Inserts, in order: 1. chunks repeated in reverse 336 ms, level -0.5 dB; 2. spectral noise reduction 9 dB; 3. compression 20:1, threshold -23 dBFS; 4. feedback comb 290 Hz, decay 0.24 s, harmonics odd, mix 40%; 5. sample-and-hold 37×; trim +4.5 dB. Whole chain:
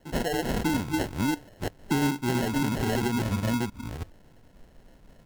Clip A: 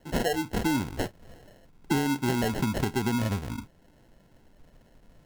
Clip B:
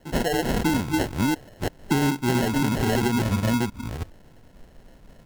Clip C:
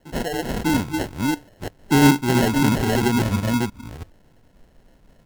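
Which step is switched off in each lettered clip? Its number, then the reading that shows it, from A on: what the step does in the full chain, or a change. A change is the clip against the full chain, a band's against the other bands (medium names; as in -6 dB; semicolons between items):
1, crest factor change +2.0 dB; 4, loudness change +4.0 LU; 3, mean gain reduction 4.0 dB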